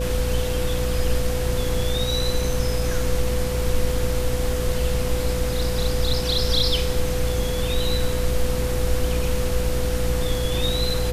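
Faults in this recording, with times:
buzz 60 Hz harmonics 12 -26 dBFS
whine 500 Hz -27 dBFS

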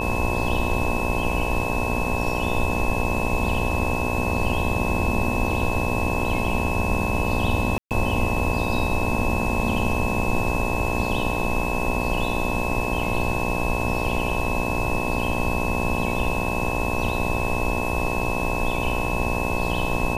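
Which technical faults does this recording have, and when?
buzz 60 Hz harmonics 18 -27 dBFS
whine 2.6 kHz -29 dBFS
7.78–7.91 s: dropout 128 ms

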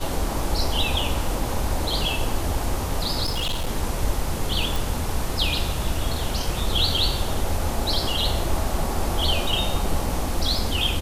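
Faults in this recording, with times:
3.24–3.70 s: clipped -21 dBFS
4.76 s: pop

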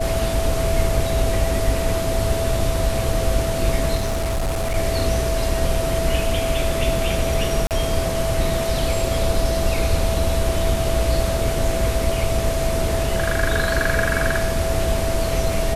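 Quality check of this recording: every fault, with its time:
whine 660 Hz -24 dBFS
3.95–4.77 s: clipped -18.5 dBFS
7.67–7.71 s: dropout 38 ms

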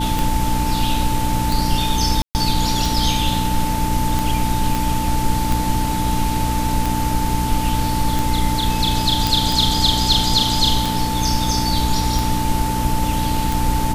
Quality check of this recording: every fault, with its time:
hum 60 Hz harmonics 5 -23 dBFS
tick 45 rpm
whine 880 Hz -23 dBFS
2.22–2.35 s: dropout 129 ms
4.75 s: pop
9.27 s: pop

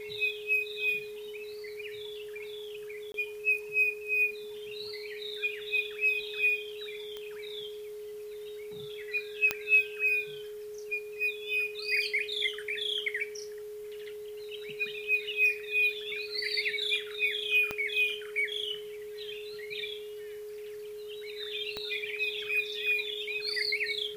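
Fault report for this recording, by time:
whine 420 Hz -39 dBFS
3.12–3.14 s: dropout 22 ms
7.17 s: pop -26 dBFS
9.51 s: pop -11 dBFS
17.71 s: pop -17 dBFS
21.77 s: pop -21 dBFS

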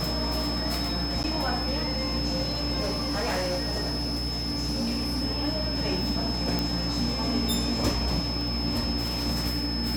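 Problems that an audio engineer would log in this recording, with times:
buzz 60 Hz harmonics 27 -33 dBFS
crackle 40 per s -33 dBFS
whine 5.2 kHz -31 dBFS
1.23–1.24 s: dropout 9.6 ms
2.80–5.23 s: clipped -24 dBFS
6.59 s: pop

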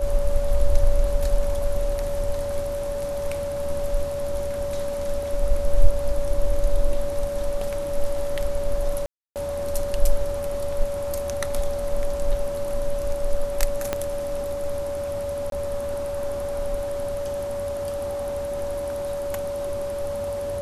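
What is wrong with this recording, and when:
whine 570 Hz -26 dBFS
5.23 s: dropout 2.4 ms
9.06–9.36 s: dropout 298 ms
13.93 s: pop -9 dBFS
15.50–15.52 s: dropout 22 ms

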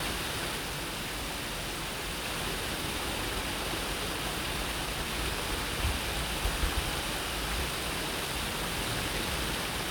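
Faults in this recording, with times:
0.56–2.26 s: clipped -32 dBFS

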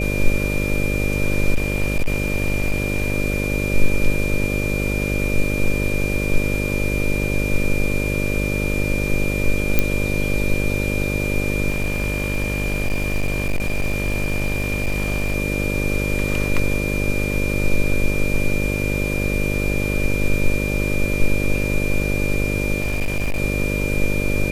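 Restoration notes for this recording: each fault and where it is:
buzz 50 Hz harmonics 12 -23 dBFS
whine 2.4 kHz -26 dBFS
1.54–3.12 s: clipped -14 dBFS
9.79 s: pop -2 dBFS
11.70–15.36 s: clipped -16.5 dBFS
22.80–23.40 s: clipped -17 dBFS

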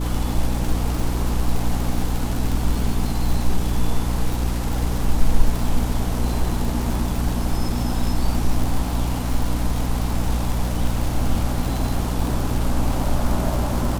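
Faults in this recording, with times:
crackle 160 per s -24 dBFS
hum 60 Hz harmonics 5 -24 dBFS

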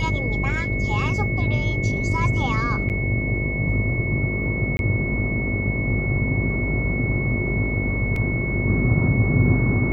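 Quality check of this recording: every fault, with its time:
buzz 50 Hz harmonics 13 -27 dBFS
whine 2.2 kHz -27 dBFS
2.89–2.90 s: dropout 8.5 ms
4.77–4.79 s: dropout 21 ms
8.16 s: dropout 2.8 ms

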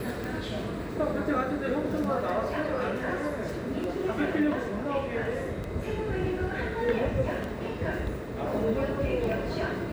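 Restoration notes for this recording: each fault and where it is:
tick 33 1/3 rpm

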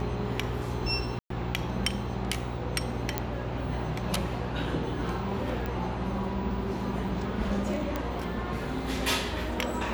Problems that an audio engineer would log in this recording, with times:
buzz 60 Hz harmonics 16 -36 dBFS
1.19–1.30 s: dropout 113 ms
3.18 s: pop -11 dBFS
5.66 s: pop -21 dBFS
7.96 s: pop -16 dBFS

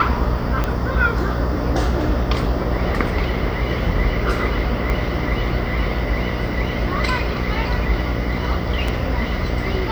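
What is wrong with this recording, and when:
buzz 60 Hz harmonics 12 -24 dBFS
0.64 s: pop -8 dBFS
4.90 s: pop
8.88 s: dropout 3.8 ms

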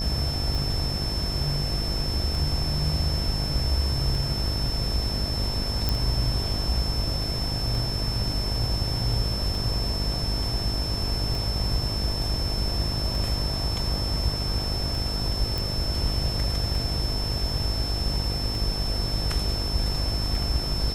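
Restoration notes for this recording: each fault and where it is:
buzz 50 Hz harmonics 19 -31 dBFS
tick 33 1/3 rpm
whine 5.3 kHz -30 dBFS
5.89 s: pop
15.58 s: pop

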